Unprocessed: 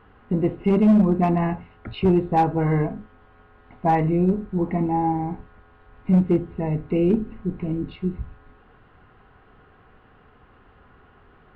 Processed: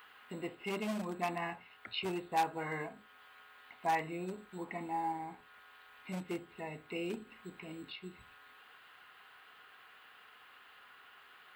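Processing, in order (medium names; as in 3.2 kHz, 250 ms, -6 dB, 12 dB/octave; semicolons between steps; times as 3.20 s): differentiator; tape noise reduction on one side only encoder only; trim +7 dB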